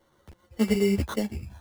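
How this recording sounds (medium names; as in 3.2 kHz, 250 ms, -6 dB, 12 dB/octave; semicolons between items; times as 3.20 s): aliases and images of a low sample rate 2.5 kHz, jitter 0%; a shimmering, thickened sound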